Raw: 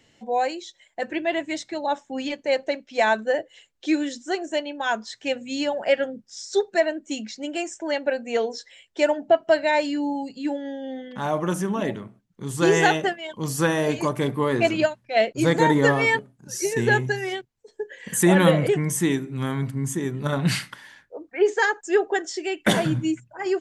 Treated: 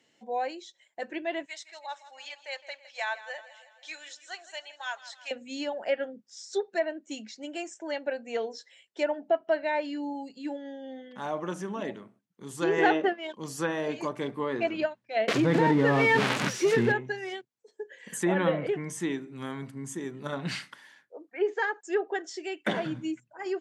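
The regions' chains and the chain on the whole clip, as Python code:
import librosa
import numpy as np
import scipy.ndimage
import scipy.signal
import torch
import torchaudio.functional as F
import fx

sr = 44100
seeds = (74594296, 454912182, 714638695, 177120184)

y = fx.chain(x, sr, fx.bessel_highpass(hz=1100.0, order=4),
    fx.echo_feedback(ms=161, feedback_pct=57, wet_db=-15.5), at=(1.46, 5.31))
y = fx.chain(y, sr, fx.highpass_res(hz=270.0, q=1.9),
    fx.leveller(passes=1), at=(12.78, 13.36))
y = fx.chain(y, sr, fx.crossing_spikes(level_db=-12.5),
    fx.bass_treble(bass_db=10, treble_db=-4),
    fx.env_flatten(amount_pct=100), at=(15.28, 16.92))
y = scipy.signal.sosfilt(scipy.signal.butter(2, 210.0, 'highpass', fs=sr, output='sos'), y)
y = fx.env_lowpass_down(y, sr, base_hz=2600.0, full_db=-16.0)
y = F.gain(torch.from_numpy(y), -7.5).numpy()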